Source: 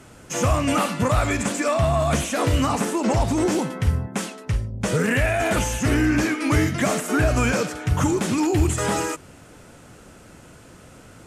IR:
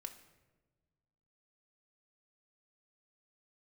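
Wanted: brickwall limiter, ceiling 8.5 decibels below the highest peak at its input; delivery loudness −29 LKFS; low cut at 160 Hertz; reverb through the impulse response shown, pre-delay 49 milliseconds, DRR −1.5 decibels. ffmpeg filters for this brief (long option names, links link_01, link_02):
-filter_complex "[0:a]highpass=160,alimiter=limit=-18.5dB:level=0:latency=1,asplit=2[link_01][link_02];[1:a]atrim=start_sample=2205,adelay=49[link_03];[link_02][link_03]afir=irnorm=-1:irlink=0,volume=5.5dB[link_04];[link_01][link_04]amix=inputs=2:normalize=0,volume=-6dB"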